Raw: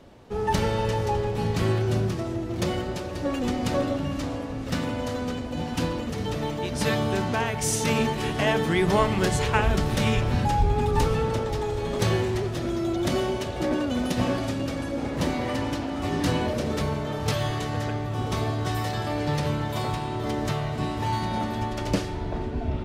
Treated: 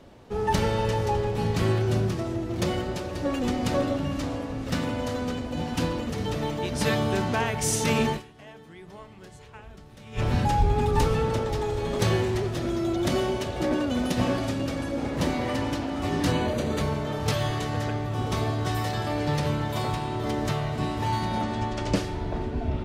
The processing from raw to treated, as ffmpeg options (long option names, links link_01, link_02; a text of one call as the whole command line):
ffmpeg -i in.wav -filter_complex "[0:a]asettb=1/sr,asplit=3[link_01][link_02][link_03];[link_01]atrim=end=16.324[link_04];[link_02]atrim=start=16.32:end=16.81,asetpts=PTS-STARTPTS,afade=type=in:duration=0.004:curve=qsin,afade=type=out:start_time=0.486:duration=0.004:curve=qsin,asuperstop=centerf=5300:order=20:qfactor=7.6[link_05];[link_03]atrim=start=16.806[link_06];[link_04][link_05]acrossfade=duration=0.004:curve1=hsin:curve2=qsin[link_07];[link_07][link_06]acrossfade=duration=0.004:curve1=qsin:curve2=hsin,asettb=1/sr,asplit=3[link_08][link_09][link_10];[link_08]atrim=end=21.424[link_11];[link_09]atrim=start=21.42:end=21.95,asetpts=PTS-STARTPTS,afade=type=in:duration=0.004:curve=qsin,afade=type=out:start_time=0.526:duration=0.004:curve=qsin,lowpass=frequency=8900:width=0.5412,lowpass=frequency=8900:width=1.3066[link_12];[link_10]atrim=start=21.946[link_13];[link_11][link_12]acrossfade=duration=0.004:curve1=hsin:curve2=qsin[link_14];[link_14][link_13]acrossfade=duration=0.004:curve1=qsin:curve2=hsin,asplit=3[link_15][link_16][link_17];[link_15]atrim=end=8.44,asetpts=PTS-STARTPTS,afade=type=out:start_time=8.16:duration=0.28:curve=exp:silence=0.0668344[link_18];[link_16]atrim=start=8.44:end=9.92,asetpts=PTS-STARTPTS,volume=-23.5dB[link_19];[link_17]atrim=start=9.92,asetpts=PTS-STARTPTS,afade=type=in:duration=0.28:curve=exp:silence=0.0668344[link_20];[link_18][link_19][link_20]concat=n=3:v=0:a=1" out.wav